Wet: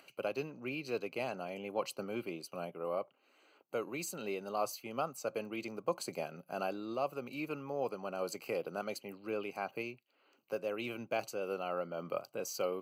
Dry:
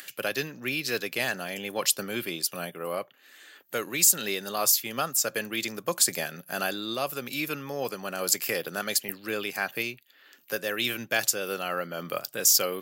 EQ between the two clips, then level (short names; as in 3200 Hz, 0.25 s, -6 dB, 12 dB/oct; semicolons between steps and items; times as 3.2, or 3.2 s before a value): running mean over 25 samples; low shelf 470 Hz -10.5 dB; +2.0 dB